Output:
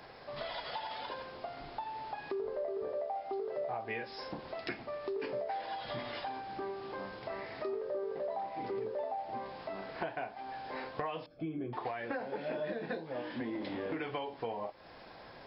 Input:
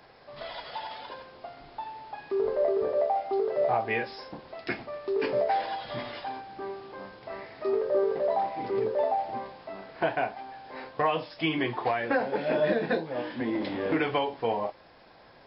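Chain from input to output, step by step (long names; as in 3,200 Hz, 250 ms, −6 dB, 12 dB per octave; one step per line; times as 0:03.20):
0:11.26–0:11.73: moving average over 46 samples
downward compressor 4 to 1, threshold −40 dBFS, peak gain reduction 16 dB
level +2.5 dB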